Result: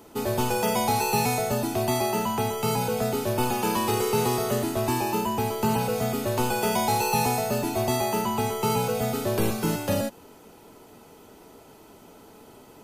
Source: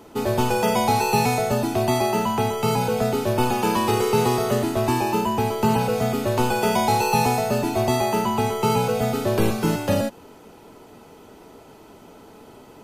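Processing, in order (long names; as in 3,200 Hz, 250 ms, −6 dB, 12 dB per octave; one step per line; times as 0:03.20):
high-shelf EQ 6,700 Hz +8 dB
soft clipping −7 dBFS, distortion −28 dB
level −4 dB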